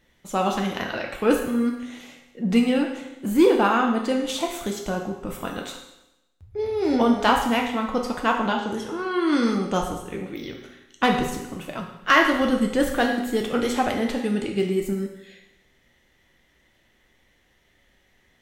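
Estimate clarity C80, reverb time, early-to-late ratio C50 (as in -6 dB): 8.0 dB, 0.90 s, 5.5 dB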